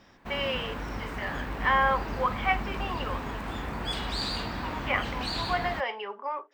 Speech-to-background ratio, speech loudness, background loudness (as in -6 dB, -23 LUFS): 4.0 dB, -30.5 LUFS, -34.5 LUFS